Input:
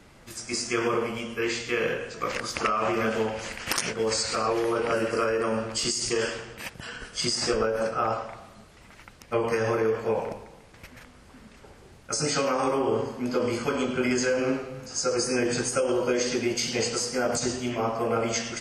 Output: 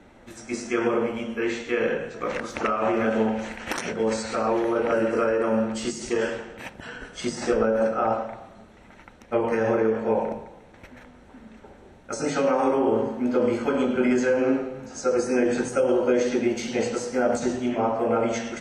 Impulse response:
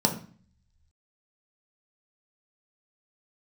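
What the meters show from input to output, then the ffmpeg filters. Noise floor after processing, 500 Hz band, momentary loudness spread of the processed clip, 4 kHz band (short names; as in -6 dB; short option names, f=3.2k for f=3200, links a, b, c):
-50 dBFS, +3.5 dB, 10 LU, -8.0 dB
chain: -filter_complex "[0:a]lowpass=f=2.4k:p=1,asplit=2[a][b];[1:a]atrim=start_sample=2205,lowshelf=f=200:g=-7[c];[b][c]afir=irnorm=-1:irlink=0,volume=-17.5dB[d];[a][d]amix=inputs=2:normalize=0"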